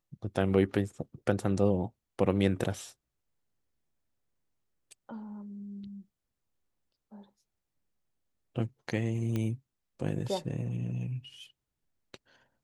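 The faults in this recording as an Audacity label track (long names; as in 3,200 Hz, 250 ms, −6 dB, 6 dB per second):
9.360000	9.360000	click −20 dBFS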